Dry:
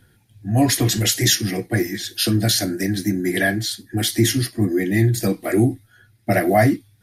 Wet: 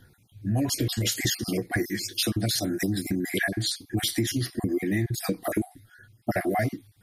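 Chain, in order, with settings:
time-frequency cells dropped at random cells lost 30%
downward compressor 6 to 1, threshold −23 dBFS, peak gain reduction 11.5 dB

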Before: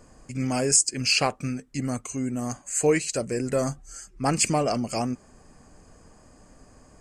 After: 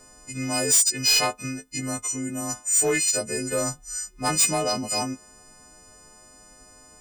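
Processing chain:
every partial snapped to a pitch grid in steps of 3 semitones
parametric band 110 Hz −3.5 dB 2.8 octaves
soft clipping −15 dBFS, distortion −5 dB

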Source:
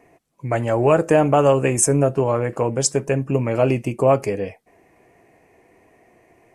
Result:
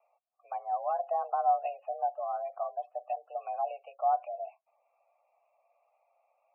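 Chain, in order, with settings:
single-sideband voice off tune +190 Hz 350–2,900 Hz
gate on every frequency bin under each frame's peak −20 dB strong
formant filter a
level −8 dB

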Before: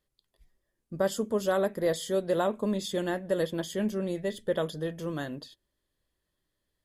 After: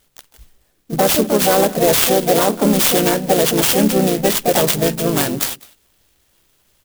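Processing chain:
flat-topped bell 4,000 Hz +14 dB 1.1 octaves
pitch-shifted copies added −3 semitones −7 dB, +5 semitones −4 dB
on a send: single-tap delay 200 ms −24 dB
on the sum: boost into a limiter +17.5 dB
converter with an unsteady clock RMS 0.072 ms
level −3.5 dB

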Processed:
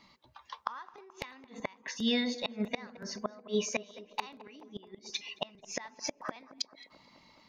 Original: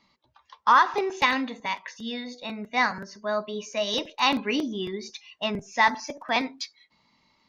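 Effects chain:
gate with flip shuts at −23 dBFS, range −32 dB
on a send: tape delay 217 ms, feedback 82%, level −16.5 dB, low-pass 1,400 Hz
on the sum: level +4.5 dB

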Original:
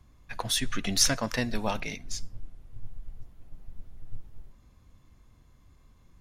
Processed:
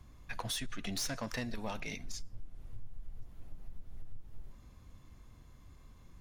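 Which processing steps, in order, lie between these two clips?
soft clipping −22.5 dBFS, distortion −12 dB
downward compressor 5 to 1, threshold −38 dBFS, peak gain reduction 12 dB
level +2 dB

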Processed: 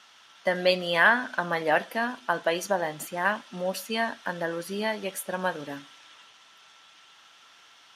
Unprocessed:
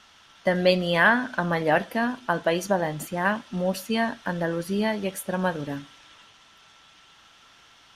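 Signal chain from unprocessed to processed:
high-pass filter 520 Hz 6 dB per octave

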